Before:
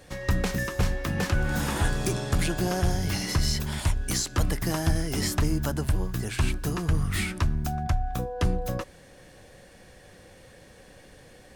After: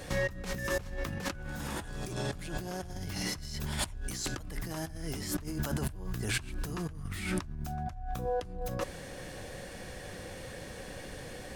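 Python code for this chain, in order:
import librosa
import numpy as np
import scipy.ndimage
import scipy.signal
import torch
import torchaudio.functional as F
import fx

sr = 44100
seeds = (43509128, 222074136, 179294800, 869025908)

y = fx.low_shelf(x, sr, hz=140.0, db=-10.0, at=(5.45, 5.85), fade=0.02)
y = fx.over_compress(y, sr, threshold_db=-36.0, ratio=-1.0)
y = y * librosa.db_to_amplitude(-1.0)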